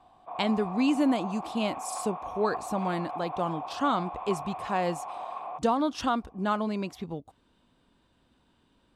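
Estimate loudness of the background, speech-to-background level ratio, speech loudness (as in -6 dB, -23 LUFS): -38.0 LUFS, 8.0 dB, -30.0 LUFS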